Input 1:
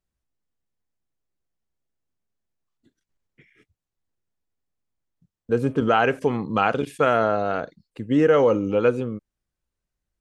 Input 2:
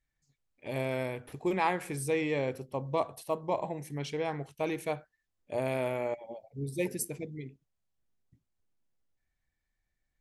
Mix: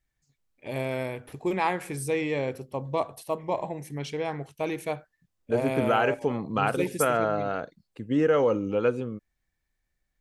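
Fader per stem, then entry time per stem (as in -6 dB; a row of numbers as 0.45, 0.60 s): -5.0, +2.5 dB; 0.00, 0.00 s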